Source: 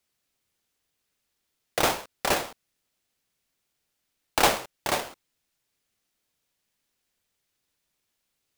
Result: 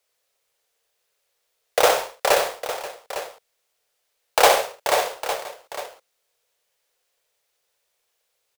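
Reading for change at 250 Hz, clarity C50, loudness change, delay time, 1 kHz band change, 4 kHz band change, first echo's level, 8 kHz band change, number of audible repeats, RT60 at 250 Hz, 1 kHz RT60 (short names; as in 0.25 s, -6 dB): -4.5 dB, none, +5.0 dB, 63 ms, +7.0 dB, +5.0 dB, -7.0 dB, +5.0 dB, 5, none, none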